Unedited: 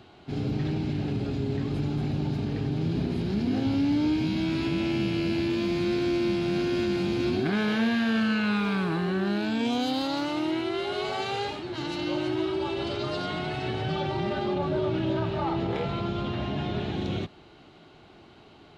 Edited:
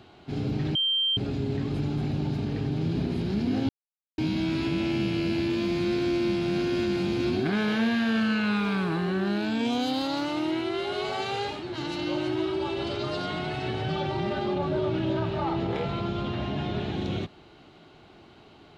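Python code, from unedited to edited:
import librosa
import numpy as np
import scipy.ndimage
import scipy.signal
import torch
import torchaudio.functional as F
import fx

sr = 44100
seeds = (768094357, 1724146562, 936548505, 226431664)

y = fx.edit(x, sr, fx.bleep(start_s=0.75, length_s=0.42, hz=3150.0, db=-22.0),
    fx.silence(start_s=3.69, length_s=0.49), tone=tone)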